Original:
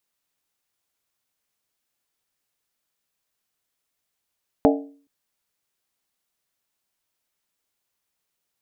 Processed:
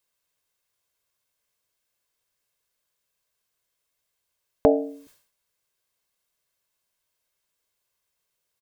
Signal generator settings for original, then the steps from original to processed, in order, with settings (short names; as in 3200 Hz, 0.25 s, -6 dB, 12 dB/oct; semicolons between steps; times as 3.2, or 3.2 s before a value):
skin hit length 0.42 s, lowest mode 282 Hz, modes 6, decay 0.46 s, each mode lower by 2 dB, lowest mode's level -12.5 dB
comb 1.9 ms, depth 41%; sustainer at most 100 dB/s